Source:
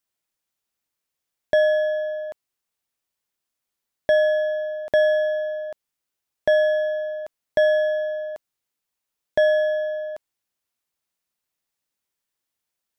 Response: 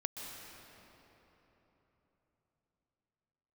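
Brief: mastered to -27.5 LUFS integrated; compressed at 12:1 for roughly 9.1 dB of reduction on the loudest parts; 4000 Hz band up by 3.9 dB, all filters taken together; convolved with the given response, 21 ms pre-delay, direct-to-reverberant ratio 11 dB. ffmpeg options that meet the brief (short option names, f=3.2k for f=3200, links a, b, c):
-filter_complex "[0:a]equalizer=f=4k:t=o:g=5,acompressor=threshold=-23dB:ratio=12,asplit=2[a][b];[1:a]atrim=start_sample=2205,adelay=21[c];[b][c]afir=irnorm=-1:irlink=0,volume=-11.5dB[d];[a][d]amix=inputs=2:normalize=0,volume=-1dB"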